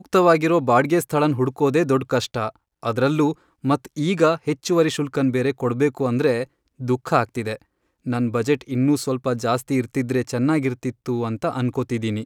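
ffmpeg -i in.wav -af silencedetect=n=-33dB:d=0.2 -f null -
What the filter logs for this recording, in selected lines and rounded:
silence_start: 2.50
silence_end: 2.83 | silence_duration: 0.34
silence_start: 3.33
silence_end: 3.64 | silence_duration: 0.31
silence_start: 6.44
silence_end: 6.80 | silence_duration: 0.36
silence_start: 7.56
silence_end: 8.06 | silence_duration: 0.50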